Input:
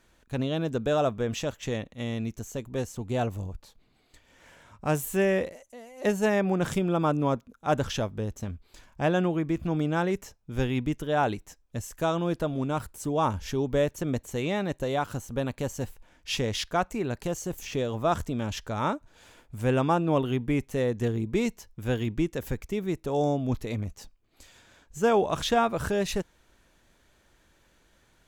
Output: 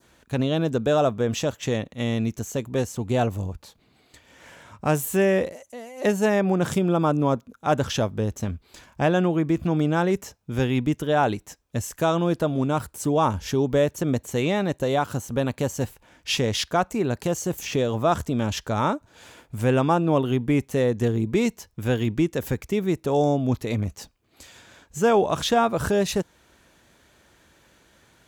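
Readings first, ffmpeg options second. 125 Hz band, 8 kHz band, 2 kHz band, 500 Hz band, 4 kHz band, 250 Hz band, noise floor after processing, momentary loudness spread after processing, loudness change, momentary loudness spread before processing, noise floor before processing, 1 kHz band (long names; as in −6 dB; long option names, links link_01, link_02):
+5.0 dB, +6.0 dB, +3.5 dB, +4.5 dB, +5.0 dB, +5.0 dB, −62 dBFS, 10 LU, +4.5 dB, 11 LU, −65 dBFS, +4.0 dB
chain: -filter_complex "[0:a]highpass=70,adynamicequalizer=threshold=0.00562:dfrequency=2200:dqfactor=1.2:tfrequency=2200:tqfactor=1.2:attack=5:release=100:ratio=0.375:range=2:mode=cutabove:tftype=bell,asplit=2[link_01][link_02];[link_02]alimiter=limit=-21dB:level=0:latency=1:release=351,volume=2dB[link_03];[link_01][link_03]amix=inputs=2:normalize=0"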